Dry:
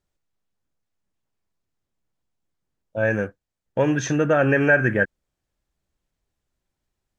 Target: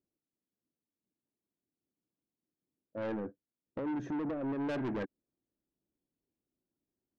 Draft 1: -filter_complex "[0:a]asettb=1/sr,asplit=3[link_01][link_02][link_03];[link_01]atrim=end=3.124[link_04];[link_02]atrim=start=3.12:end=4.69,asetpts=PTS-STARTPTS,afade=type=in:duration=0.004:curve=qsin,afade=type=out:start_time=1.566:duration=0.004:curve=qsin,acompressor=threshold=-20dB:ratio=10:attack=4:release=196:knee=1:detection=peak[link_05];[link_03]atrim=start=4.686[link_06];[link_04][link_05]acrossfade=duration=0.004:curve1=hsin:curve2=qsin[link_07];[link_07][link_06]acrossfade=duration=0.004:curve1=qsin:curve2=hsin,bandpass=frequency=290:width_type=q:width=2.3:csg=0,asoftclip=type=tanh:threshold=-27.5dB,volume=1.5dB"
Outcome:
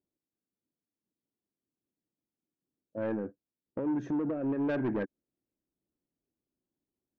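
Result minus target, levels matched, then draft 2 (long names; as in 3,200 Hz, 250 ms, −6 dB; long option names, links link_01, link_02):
soft clipping: distortion −5 dB
-filter_complex "[0:a]asettb=1/sr,asplit=3[link_01][link_02][link_03];[link_01]atrim=end=3.124[link_04];[link_02]atrim=start=3.12:end=4.69,asetpts=PTS-STARTPTS,afade=type=in:duration=0.004:curve=qsin,afade=type=out:start_time=1.566:duration=0.004:curve=qsin,acompressor=threshold=-20dB:ratio=10:attack=4:release=196:knee=1:detection=peak[link_05];[link_03]atrim=start=4.686[link_06];[link_04][link_05]acrossfade=duration=0.004:curve1=hsin:curve2=qsin[link_07];[link_07][link_06]acrossfade=duration=0.004:curve1=qsin:curve2=hsin,bandpass=frequency=290:width_type=q:width=2.3:csg=0,asoftclip=type=tanh:threshold=-34dB,volume=1.5dB"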